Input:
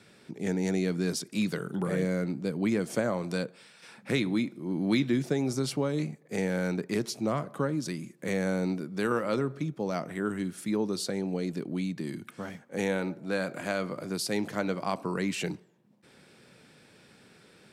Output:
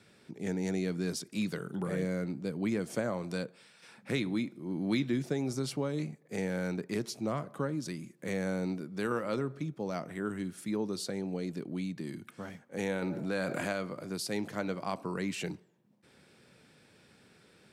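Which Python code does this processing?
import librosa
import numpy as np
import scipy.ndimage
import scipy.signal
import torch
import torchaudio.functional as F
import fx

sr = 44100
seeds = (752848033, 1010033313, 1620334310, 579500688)

y = fx.peak_eq(x, sr, hz=79.0, db=4.5, octaves=0.77)
y = fx.env_flatten(y, sr, amount_pct=70, at=(13.02, 13.73))
y = y * 10.0 ** (-4.5 / 20.0)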